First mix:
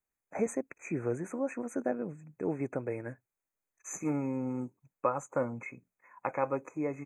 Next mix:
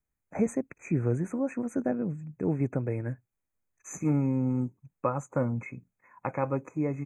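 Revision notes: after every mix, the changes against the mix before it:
master: add bass and treble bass +13 dB, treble −1 dB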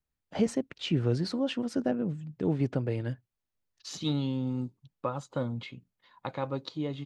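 second voice −4.0 dB
master: remove linear-phase brick-wall band-stop 2,600–6,000 Hz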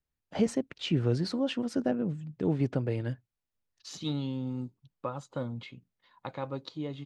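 second voice −3.0 dB

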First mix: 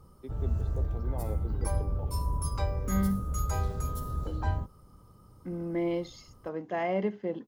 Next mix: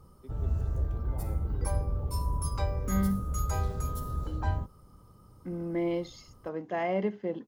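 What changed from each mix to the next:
first voice −7.5 dB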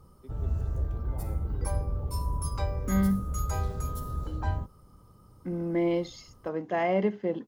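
second voice +3.5 dB

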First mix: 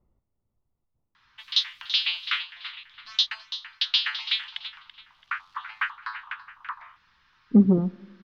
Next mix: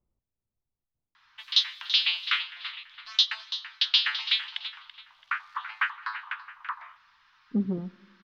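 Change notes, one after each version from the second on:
speech −10.5 dB
background: send on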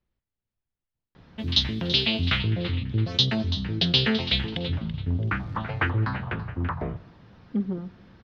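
speech: remove Savitzky-Golay smoothing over 65 samples
background: remove Butterworth high-pass 1,000 Hz 48 dB per octave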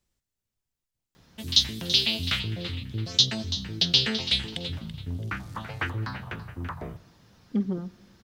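background −7.0 dB
master: remove high-frequency loss of the air 310 metres

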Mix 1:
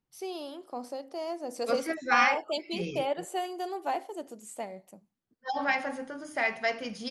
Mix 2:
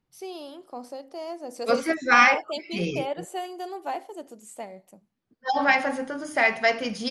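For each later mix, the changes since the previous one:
second voice +7.5 dB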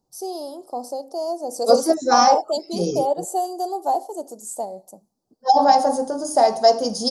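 master: add drawn EQ curve 120 Hz 0 dB, 800 Hz +11 dB, 2,300 Hz −23 dB, 4,800 Hz +10 dB, 7,300 Hz +13 dB

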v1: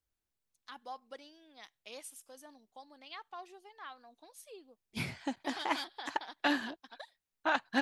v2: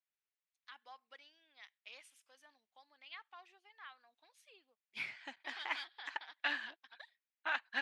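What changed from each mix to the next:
master: add resonant band-pass 2,200 Hz, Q 1.5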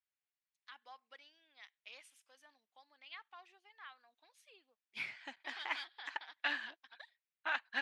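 nothing changed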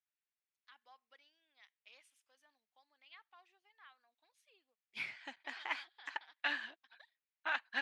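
first voice −7.5 dB

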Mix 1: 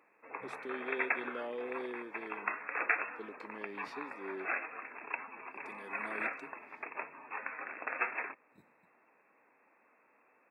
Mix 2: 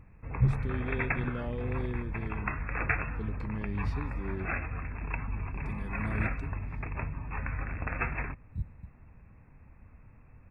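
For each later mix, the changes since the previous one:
first sound: add low-shelf EQ 240 Hz +9.5 dB
master: remove high-pass filter 330 Hz 24 dB per octave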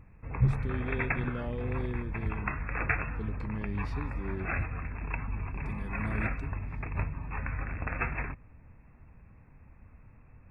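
second sound: entry −1.60 s

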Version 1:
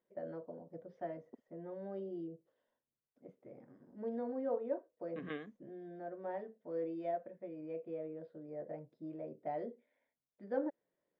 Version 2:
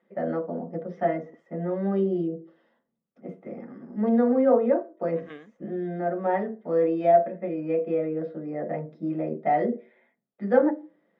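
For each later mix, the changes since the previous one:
first voice +10.0 dB
reverb: on, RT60 0.40 s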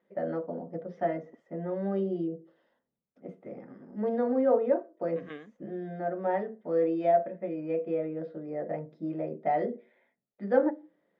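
first voice: send −8.5 dB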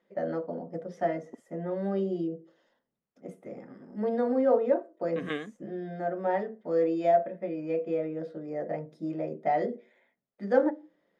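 second voice +8.5 dB
master: remove high-frequency loss of the air 240 metres

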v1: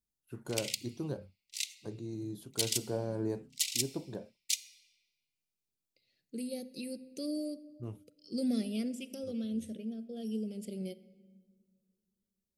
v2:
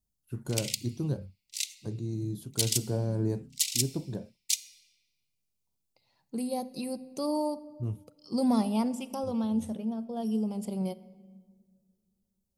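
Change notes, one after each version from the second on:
second voice: remove Butterworth band-reject 950 Hz, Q 0.6
master: add bass and treble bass +11 dB, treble +5 dB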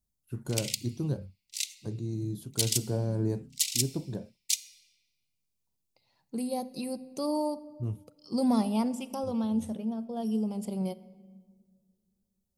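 nothing changed

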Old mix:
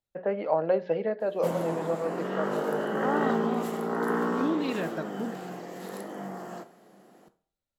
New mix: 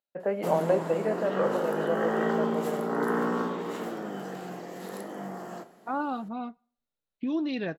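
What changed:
second voice: entry +2.85 s
background: entry −1.00 s

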